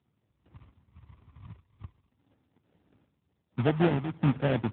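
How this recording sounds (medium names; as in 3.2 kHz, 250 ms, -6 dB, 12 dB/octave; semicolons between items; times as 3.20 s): phasing stages 6, 0.67 Hz, lowest notch 520–1100 Hz; aliases and images of a low sample rate 1.1 kHz, jitter 20%; AMR-NB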